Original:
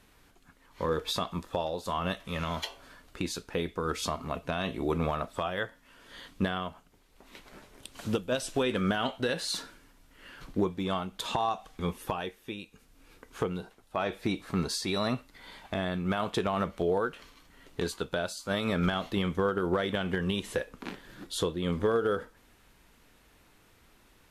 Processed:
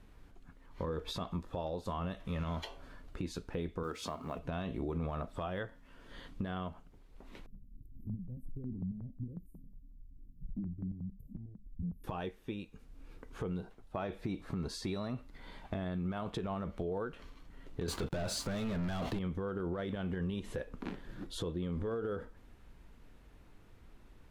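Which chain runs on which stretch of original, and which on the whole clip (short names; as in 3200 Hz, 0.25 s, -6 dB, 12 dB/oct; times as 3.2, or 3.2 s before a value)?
3.83–4.39 HPF 310 Hz 6 dB/oct + companded quantiser 6-bit
7.46–12.04 inverse Chebyshev band-stop 1100–4600 Hz, stop band 80 dB + compressor 2:1, threshold -36 dBFS + step phaser 11 Hz 310–2800 Hz
17.88–19.19 HPF 47 Hz + sample leveller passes 5
whole clip: tilt -2.5 dB/oct; limiter -20 dBFS; compressor 2.5:1, threshold -32 dBFS; gain -3.5 dB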